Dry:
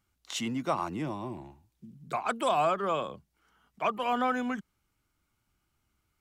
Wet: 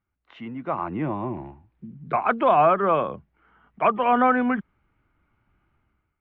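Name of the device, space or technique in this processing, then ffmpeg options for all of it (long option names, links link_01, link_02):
action camera in a waterproof case: -af "lowpass=frequency=2300:width=0.5412,lowpass=frequency=2300:width=1.3066,dynaudnorm=framelen=570:gausssize=3:maxgain=15.5dB,volume=-4.5dB" -ar 22050 -c:a aac -b:a 64k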